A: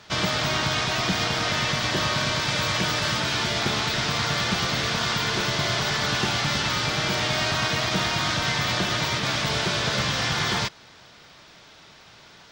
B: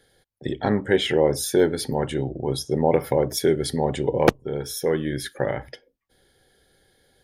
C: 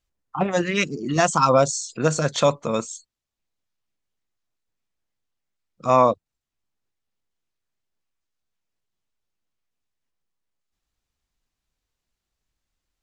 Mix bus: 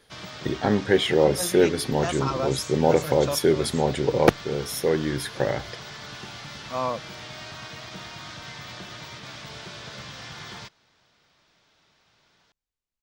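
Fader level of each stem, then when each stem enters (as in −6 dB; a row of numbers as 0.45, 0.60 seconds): −15.0, 0.0, −11.5 decibels; 0.00, 0.00, 0.85 seconds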